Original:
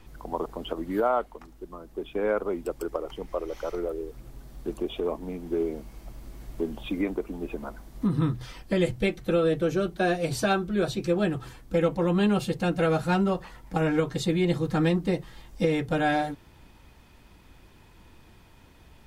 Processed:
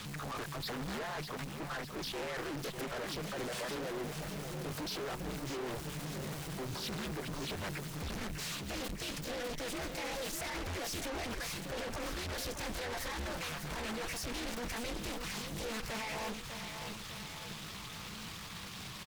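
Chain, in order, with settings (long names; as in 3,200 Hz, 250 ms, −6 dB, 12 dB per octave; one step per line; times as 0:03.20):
frequency shifter −150 Hz
pitch shifter +6.5 semitones
tilt shelving filter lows −6.5 dB, about 930 Hz
compressor whose output falls as the input rises −33 dBFS, ratio −1
reverb reduction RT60 0.5 s
tube saturation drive 48 dB, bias 0.5
repeating echo 599 ms, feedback 53%, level −7 dB
highs frequency-modulated by the lows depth 0.91 ms
level +9.5 dB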